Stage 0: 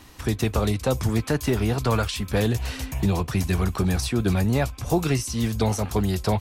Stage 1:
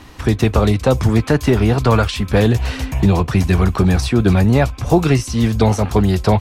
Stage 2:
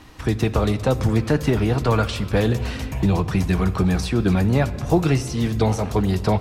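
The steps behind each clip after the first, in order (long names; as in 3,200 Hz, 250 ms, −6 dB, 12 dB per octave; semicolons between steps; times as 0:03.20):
low-pass filter 3,300 Hz 6 dB per octave; level +9 dB
rectangular room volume 4,000 cubic metres, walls mixed, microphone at 0.56 metres; level −5.5 dB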